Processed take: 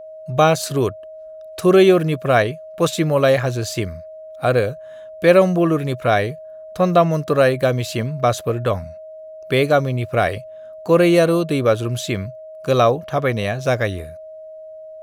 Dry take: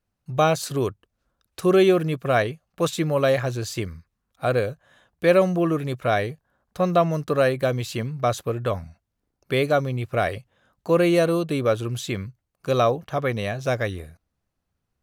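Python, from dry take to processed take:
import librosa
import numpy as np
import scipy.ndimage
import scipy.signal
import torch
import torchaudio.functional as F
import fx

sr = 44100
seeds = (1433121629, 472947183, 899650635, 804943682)

y = x + 10.0 ** (-39.0 / 20.0) * np.sin(2.0 * np.pi * 630.0 * np.arange(len(x)) / sr)
y = y * librosa.db_to_amplitude(5.0)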